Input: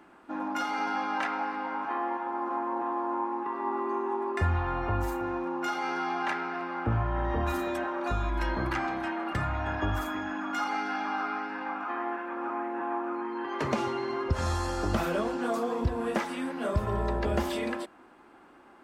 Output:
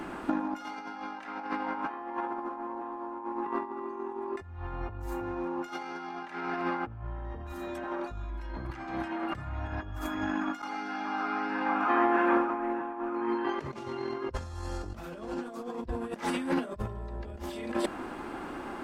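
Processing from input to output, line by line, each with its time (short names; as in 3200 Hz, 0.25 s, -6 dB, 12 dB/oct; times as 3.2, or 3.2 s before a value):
10.62–12.75 fade in quadratic, from -21 dB
whole clip: high shelf 2900 Hz +9 dB; negative-ratio compressor -38 dBFS, ratio -0.5; tilt -2 dB/oct; gain +4.5 dB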